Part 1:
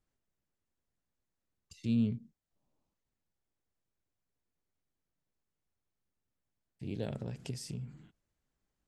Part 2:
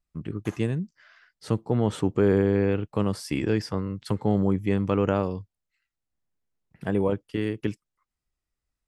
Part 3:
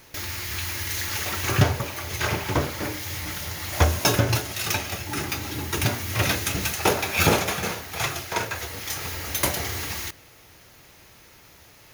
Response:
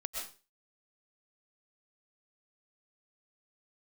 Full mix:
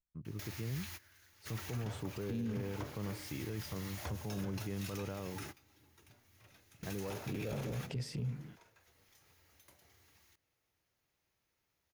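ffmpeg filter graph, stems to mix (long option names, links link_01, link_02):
-filter_complex "[0:a]equalizer=frequency=125:width_type=o:width=1:gain=9,equalizer=frequency=250:width_type=o:width=1:gain=4,equalizer=frequency=500:width_type=o:width=1:gain=11,equalizer=frequency=1000:width_type=o:width=1:gain=6,equalizer=frequency=2000:width_type=o:width=1:gain=9,equalizer=frequency=4000:width_type=o:width=1:gain=4,equalizer=frequency=8000:width_type=o:width=1:gain=-5,adelay=450,volume=-3dB[link_01];[1:a]equalizer=frequency=120:width_type=o:width=0.56:gain=7.5,volume=-14dB,asplit=2[link_02][link_03];[2:a]acompressor=threshold=-35dB:ratio=2,adelay=250,volume=-12dB[link_04];[link_03]apad=whole_len=537300[link_05];[link_04][link_05]sidechaingate=range=-20dB:threshold=-58dB:ratio=16:detection=peak[link_06];[link_01][link_02][link_06]amix=inputs=3:normalize=0,alimiter=level_in=7dB:limit=-24dB:level=0:latency=1:release=18,volume=-7dB"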